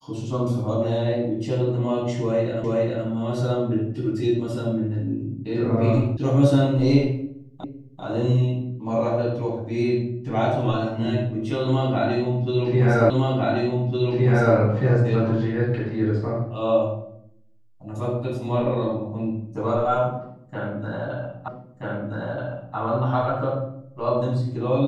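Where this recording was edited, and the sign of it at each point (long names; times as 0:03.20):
0:02.64: the same again, the last 0.42 s
0:06.17: cut off before it has died away
0:07.64: the same again, the last 0.39 s
0:13.10: the same again, the last 1.46 s
0:21.48: the same again, the last 1.28 s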